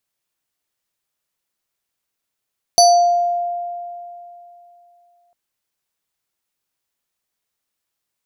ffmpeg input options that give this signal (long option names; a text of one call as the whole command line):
ffmpeg -f lavfi -i "aevalsrc='0.501*pow(10,-3*t/2.96)*sin(2*PI*699*t+1.2*pow(10,-3*t/0.71)*sin(2*PI*7.53*699*t))':duration=2.55:sample_rate=44100" out.wav